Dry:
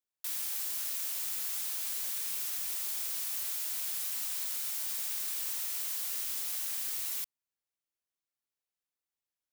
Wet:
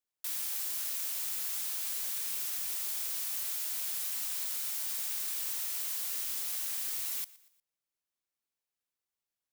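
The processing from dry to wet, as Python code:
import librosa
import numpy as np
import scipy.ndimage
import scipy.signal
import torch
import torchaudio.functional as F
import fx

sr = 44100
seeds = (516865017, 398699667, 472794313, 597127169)

y = fx.echo_feedback(x, sr, ms=119, feedback_pct=43, wet_db=-21)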